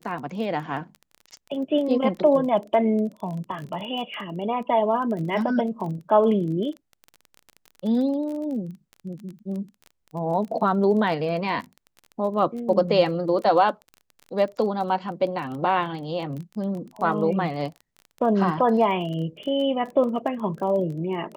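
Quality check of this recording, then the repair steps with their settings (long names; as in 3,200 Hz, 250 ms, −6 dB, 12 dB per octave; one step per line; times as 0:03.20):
surface crackle 22 per second −32 dBFS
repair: click removal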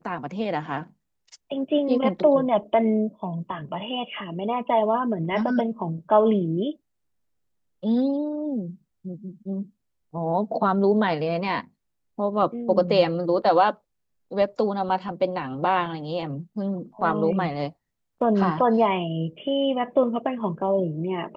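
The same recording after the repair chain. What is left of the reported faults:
none of them is left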